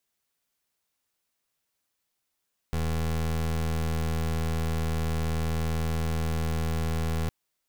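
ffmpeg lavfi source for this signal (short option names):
-f lavfi -i "aevalsrc='0.0422*(2*lt(mod(80.4*t,1),0.26)-1)':d=4.56:s=44100"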